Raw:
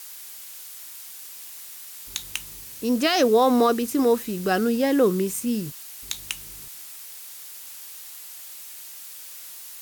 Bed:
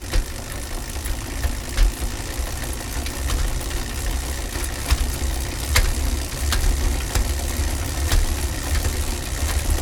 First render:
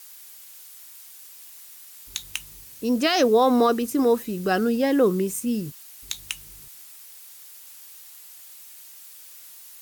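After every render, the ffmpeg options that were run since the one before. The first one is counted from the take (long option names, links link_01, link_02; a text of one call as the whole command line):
ffmpeg -i in.wav -af "afftdn=noise_reduction=6:noise_floor=-41" out.wav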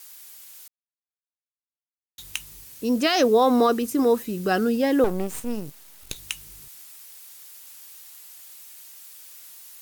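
ffmpeg -i in.wav -filter_complex "[0:a]asettb=1/sr,asplit=3[link_01][link_02][link_03];[link_01]atrim=end=5.044[link_04];[link_02]atrim=start=5.04:end=6.16,asetpts=PTS-STARTPTS,afade=type=in:duration=0.004:curve=qsin,afade=type=out:start_time=1.116:duration=0.004:curve=qsin,aeval=exprs='max(val(0),0)':channel_layout=same[link_05];[link_03]atrim=start=6.156[link_06];[link_04][link_05]acrossfade=duration=0.004:curve1=hsin:curve2=qsin[link_07];[link_07][link_06]acrossfade=duration=0.004:curve1=qsin:curve2=hsin,asplit=3[link_08][link_09][link_10];[link_08]atrim=end=0.68,asetpts=PTS-STARTPTS,afade=type=out:start_time=0.676:duration=0.004:curve=hsin[link_11];[link_09]atrim=start=0.68:end=2.18,asetpts=PTS-STARTPTS,volume=0[link_12];[link_10]atrim=start=2.18,asetpts=PTS-STARTPTS,afade=type=in:duration=0.004:curve=hsin[link_13];[link_11][link_12][link_13]concat=n=3:v=0:a=1" out.wav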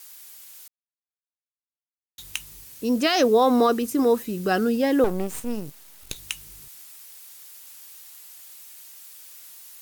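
ffmpeg -i in.wav -af anull out.wav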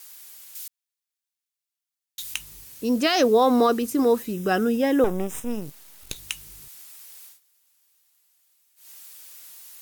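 ffmpeg -i in.wav -filter_complex "[0:a]asettb=1/sr,asplit=3[link_01][link_02][link_03];[link_01]atrim=end=0.554[link_04];[link_02]atrim=start=0.55:end=2.34,asetpts=PTS-STARTPTS,afade=type=in:duration=0.004:curve=qsin,afade=type=out:start_time=1.786:duration=0.004:curve=qsin,tiltshelf=frequency=1200:gain=-8.5[link_05];[link_03]atrim=start=2.336[link_06];[link_04][link_05]acrossfade=duration=0.004:curve1=hsin:curve2=qsin[link_07];[link_07][link_06]acrossfade=duration=0.004:curve1=qsin:curve2=hsin,asettb=1/sr,asplit=3[link_08][link_09][link_10];[link_08]atrim=end=4.334[link_11];[link_09]atrim=start=4.33:end=5.62,asetpts=PTS-STARTPTS,afade=type=in:duration=0.004:curve=qsin,afade=type=out:start_time=1.286:duration=0.004:curve=qsin,asuperstop=centerf=4400:order=4:qfactor=4.3[link_12];[link_10]atrim=start=5.616[link_13];[link_11][link_12]acrossfade=duration=0.004:curve1=hsin:curve2=qsin[link_14];[link_14][link_13]acrossfade=duration=0.004:curve1=qsin:curve2=hsin,asplit=3[link_15][link_16][link_17];[link_15]atrim=end=7.4,asetpts=PTS-STARTPTS,afade=type=out:start_time=7.25:duration=0.15:silence=0.1[link_18];[link_16]atrim=start=7.4:end=8.76,asetpts=PTS-STARTPTS,volume=-20dB[link_19];[link_17]atrim=start=8.76,asetpts=PTS-STARTPTS,afade=type=in:duration=0.15:silence=0.1[link_20];[link_18][link_19][link_20]concat=n=3:v=0:a=1" out.wav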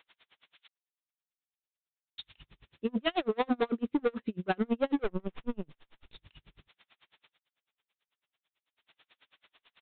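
ffmpeg -i in.wav -af "aresample=8000,volume=20.5dB,asoftclip=hard,volume=-20.5dB,aresample=44100,aeval=exprs='val(0)*pow(10,-38*(0.5-0.5*cos(2*PI*9.1*n/s))/20)':channel_layout=same" out.wav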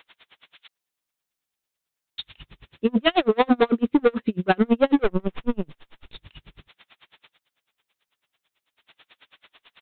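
ffmpeg -i in.wav -af "volume=10.5dB" out.wav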